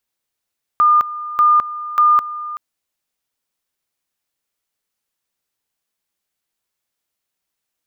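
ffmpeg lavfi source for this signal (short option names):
-f lavfi -i "aevalsrc='pow(10,(-8.5-15.5*gte(mod(t,0.59),0.21))/20)*sin(2*PI*1210*t)':d=1.77:s=44100"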